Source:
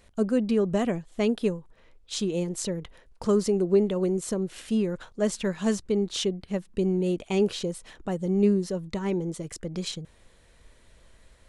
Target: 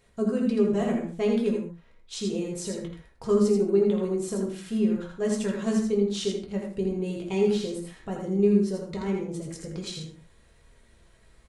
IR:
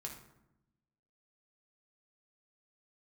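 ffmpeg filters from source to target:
-filter_complex "[0:a]aecho=1:1:82:0.562[s0];[1:a]atrim=start_sample=2205,afade=t=out:st=0.19:d=0.01,atrim=end_sample=8820[s1];[s0][s1]afir=irnorm=-1:irlink=0"

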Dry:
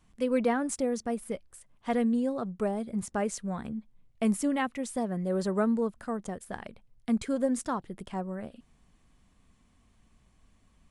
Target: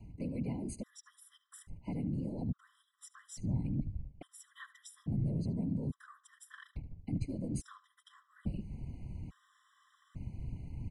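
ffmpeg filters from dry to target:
-filter_complex "[0:a]bass=f=250:g=14,treble=f=4000:g=-8,areverse,acompressor=threshold=0.0158:ratio=8,areverse,afftfilt=real='hypot(re,im)*cos(2*PI*random(0))':imag='hypot(re,im)*sin(2*PI*random(1))':win_size=512:overlap=0.75,acrossover=split=180|3000[s0][s1][s2];[s1]acompressor=threshold=0.00141:ratio=10[s3];[s0][s3][s2]amix=inputs=3:normalize=0,asoftclip=type=tanh:threshold=0.0158,asplit=2[s4][s5];[s5]adelay=74,lowpass=f=4500:p=1,volume=0.158,asplit=2[s6][s7];[s7]adelay=74,lowpass=f=4500:p=1,volume=0.34,asplit=2[s8][s9];[s9]adelay=74,lowpass=f=4500:p=1,volume=0.34[s10];[s4][s6][s8][s10]amix=inputs=4:normalize=0,afftfilt=real='re*gt(sin(2*PI*0.59*pts/sr)*(1-2*mod(floor(b*sr/1024/1000),2)),0)':imag='im*gt(sin(2*PI*0.59*pts/sr)*(1-2*mod(floor(b*sr/1024/1000),2)),0)':win_size=1024:overlap=0.75,volume=5.31"

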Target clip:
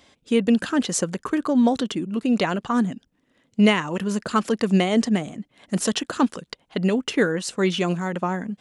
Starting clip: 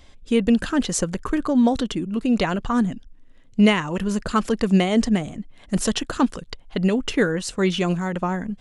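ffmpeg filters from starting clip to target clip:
-af "highpass=160"

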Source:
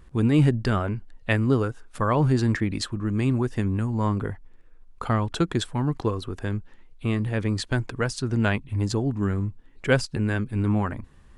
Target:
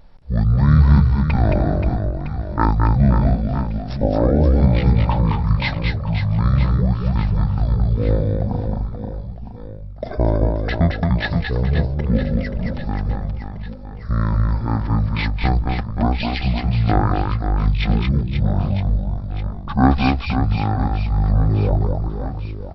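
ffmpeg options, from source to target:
-af "aecho=1:1:110|264|479.6|781.4|1204:0.631|0.398|0.251|0.158|0.1,asetrate=22050,aresample=44100,volume=1.78"

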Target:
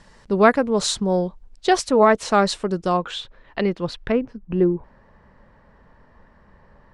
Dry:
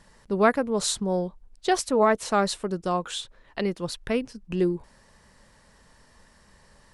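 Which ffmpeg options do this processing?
-af "asetnsamples=n=441:p=0,asendcmd='2.97 lowpass f 3600;4.12 lowpass f 1500',lowpass=7000,volume=1.88"

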